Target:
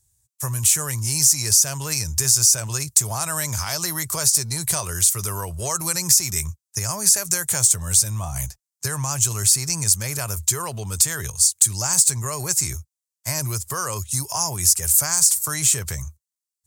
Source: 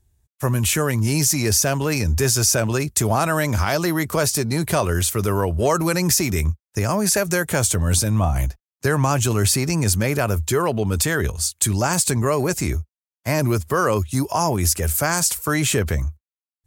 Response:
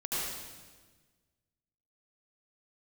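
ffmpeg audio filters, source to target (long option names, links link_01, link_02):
-af "equalizer=frequency=125:width_type=o:width=1:gain=11,equalizer=frequency=250:width_type=o:width=1:gain=-6,equalizer=frequency=1000:width_type=o:width=1:gain=7,equalizer=frequency=2000:width_type=o:width=1:gain=4,equalizer=frequency=4000:width_type=o:width=1:gain=11,equalizer=frequency=8000:width_type=o:width=1:gain=9,acompressor=threshold=-12dB:ratio=2.5,aexciter=amount=5:drive=4.8:freq=5300,volume=-12.5dB"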